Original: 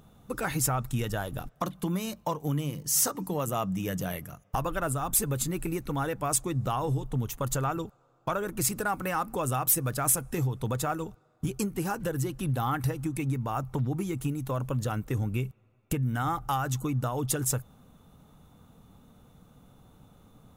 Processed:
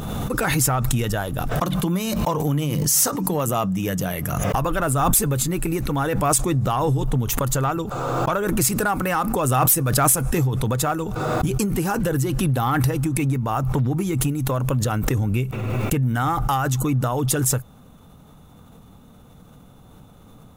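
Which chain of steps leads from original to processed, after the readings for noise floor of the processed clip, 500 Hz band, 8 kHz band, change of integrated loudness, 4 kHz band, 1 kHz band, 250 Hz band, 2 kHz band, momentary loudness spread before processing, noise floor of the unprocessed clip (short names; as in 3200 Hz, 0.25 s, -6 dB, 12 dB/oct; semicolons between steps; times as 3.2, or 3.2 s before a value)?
-48 dBFS, +9.0 dB, +7.5 dB, +8.5 dB, +9.0 dB, +8.5 dB, +9.5 dB, +9.0 dB, 9 LU, -64 dBFS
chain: in parallel at -7 dB: hard clip -23.5 dBFS, distortion -16 dB; on the sum: backwards sustainer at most 22 dB/s; gain +4 dB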